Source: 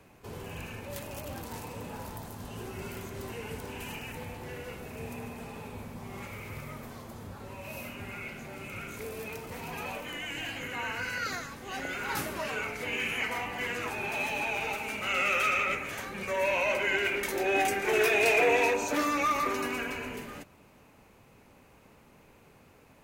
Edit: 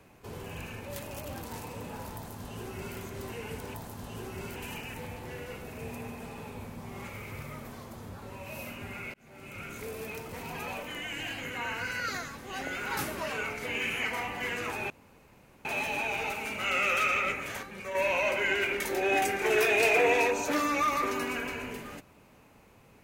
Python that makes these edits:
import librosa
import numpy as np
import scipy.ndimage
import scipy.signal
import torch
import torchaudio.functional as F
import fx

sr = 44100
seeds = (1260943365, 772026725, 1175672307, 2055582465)

y = fx.edit(x, sr, fx.duplicate(start_s=2.15, length_s=0.82, to_s=3.74),
    fx.fade_in_span(start_s=8.32, length_s=0.77, curve='qsin'),
    fx.insert_room_tone(at_s=14.08, length_s=0.75),
    fx.clip_gain(start_s=16.06, length_s=0.32, db=-5.5), tone=tone)